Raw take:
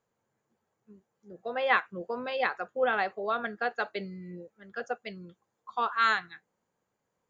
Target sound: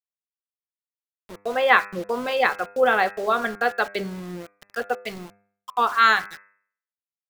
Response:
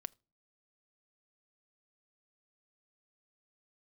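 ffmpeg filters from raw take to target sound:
-af "agate=range=-33dB:threshold=-51dB:ratio=3:detection=peak,aeval=exprs='val(0)*gte(abs(val(0)),0.00631)':channel_layout=same,bandreject=frequency=100.5:width_type=h:width=4,bandreject=frequency=201:width_type=h:width=4,bandreject=frequency=301.5:width_type=h:width=4,bandreject=frequency=402:width_type=h:width=4,bandreject=frequency=502.5:width_type=h:width=4,bandreject=frequency=603:width_type=h:width=4,bandreject=frequency=703.5:width_type=h:width=4,bandreject=frequency=804:width_type=h:width=4,bandreject=frequency=904.5:width_type=h:width=4,bandreject=frequency=1005:width_type=h:width=4,bandreject=frequency=1105.5:width_type=h:width=4,bandreject=frequency=1206:width_type=h:width=4,bandreject=frequency=1306.5:width_type=h:width=4,bandreject=frequency=1407:width_type=h:width=4,bandreject=frequency=1507.5:width_type=h:width=4,bandreject=frequency=1608:width_type=h:width=4,bandreject=frequency=1708.5:width_type=h:width=4,bandreject=frequency=1809:width_type=h:width=4,bandreject=frequency=1909.5:width_type=h:width=4,bandreject=frequency=2010:width_type=h:width=4,bandreject=frequency=2110.5:width_type=h:width=4,bandreject=frequency=2211:width_type=h:width=4,bandreject=frequency=2311.5:width_type=h:width=4,bandreject=frequency=2412:width_type=h:width=4,bandreject=frequency=2512.5:width_type=h:width=4,bandreject=frequency=2613:width_type=h:width=4,volume=8.5dB"

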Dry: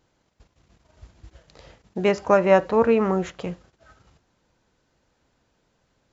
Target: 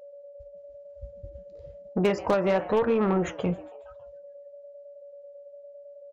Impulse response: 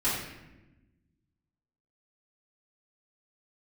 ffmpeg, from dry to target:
-filter_complex "[0:a]afftdn=noise_reduction=26:noise_floor=-39,acompressor=threshold=-22dB:ratio=10,asplit=2[link_01][link_02];[link_02]asplit=4[link_03][link_04][link_05][link_06];[link_03]adelay=138,afreqshift=130,volume=-21.5dB[link_07];[link_04]adelay=276,afreqshift=260,volume=-27dB[link_08];[link_05]adelay=414,afreqshift=390,volume=-32.5dB[link_09];[link_06]adelay=552,afreqshift=520,volume=-38dB[link_10];[link_07][link_08][link_09][link_10]amix=inputs=4:normalize=0[link_11];[link_01][link_11]amix=inputs=2:normalize=0,aeval=exprs='val(0)+0.00398*sin(2*PI*570*n/s)':channel_layout=same,flanger=delay=3.9:depth=8.1:regen=-66:speed=1:shape=triangular,aeval=exprs='0.112*(cos(1*acos(clip(val(0)/0.112,-1,1)))-cos(1*PI/2))+0.0112*(cos(5*acos(clip(val(0)/0.112,-1,1)))-cos(5*PI/2))':channel_layout=same,volume=5.5dB"

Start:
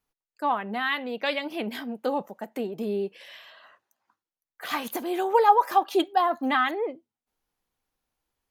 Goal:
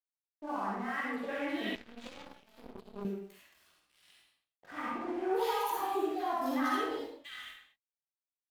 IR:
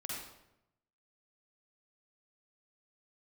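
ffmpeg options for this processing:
-filter_complex "[0:a]acompressor=threshold=-24dB:ratio=3,acrossover=split=680|2200[link_01][link_02][link_03];[link_02]adelay=50[link_04];[link_03]adelay=740[link_05];[link_01][link_04][link_05]amix=inputs=3:normalize=0,flanger=delay=15:depth=6.5:speed=1.8,aeval=exprs='sgn(val(0))*max(abs(val(0))-0.00251,0)':channel_layout=same[link_06];[1:a]atrim=start_sample=2205,afade=type=out:start_time=0.36:duration=0.01,atrim=end_sample=16317[link_07];[link_06][link_07]afir=irnorm=-1:irlink=0,asettb=1/sr,asplit=3[link_08][link_09][link_10];[link_08]atrim=end=1.754[link_11];[link_09]atrim=start=1.75:end=3.05,asetpts=PTS-STARTPTS,afade=type=in:duration=0.004:curve=qsin,afade=type=out:start_time=1.296:duration=0.004:curve=qsin,aeval=exprs='0.0944*(cos(1*acos(clip(val(0)/0.0944,-1,1)))-cos(1*PI/2))+0.0299*(cos(3*acos(clip(val(0)/0.0944,-1,1)))-cos(3*PI/2))+0.00473*(cos(4*acos(clip(val(0)/0.0944,-1,1)))-cos(4*PI/2))+0.00531*(cos(6*acos(clip(val(0)/0.0944,-1,1)))-cos(6*PI/2))':channel_layout=same[link_12];[link_10]atrim=start=3.046[link_13];[link_11][link_12]acrossfade=duration=0.004:curve1=hsin:curve2=qsin[link_14];[link_14][link_13]acrossfade=duration=0.004:curve1=qsin:curve2=hsin"

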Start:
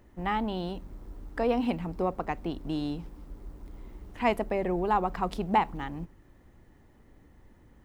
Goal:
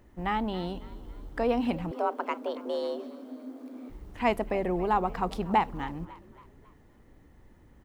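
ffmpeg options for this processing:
ffmpeg -i in.wav -filter_complex "[0:a]asplit=5[link_01][link_02][link_03][link_04][link_05];[link_02]adelay=275,afreqshift=51,volume=-18.5dB[link_06];[link_03]adelay=550,afreqshift=102,volume=-25.4dB[link_07];[link_04]adelay=825,afreqshift=153,volume=-32.4dB[link_08];[link_05]adelay=1100,afreqshift=204,volume=-39.3dB[link_09];[link_01][link_06][link_07][link_08][link_09]amix=inputs=5:normalize=0,asettb=1/sr,asplit=3[link_10][link_11][link_12];[link_10]atrim=end=1.914[link_13];[link_11]atrim=start=1.91:end=3.9,asetpts=PTS-STARTPTS,afade=type=in:duration=0.004:curve=qsin,afade=type=out:start_time=1.986:duration=0.004:curve=qsin,afreqshift=220[link_14];[link_12]atrim=start=3.896[link_15];[link_13][link_14]acrossfade=duration=0.004:curve1=hsin:curve2=qsin[link_16];[link_16][link_15]acrossfade=duration=0.004:curve1=qsin:curve2=hsin" out.wav

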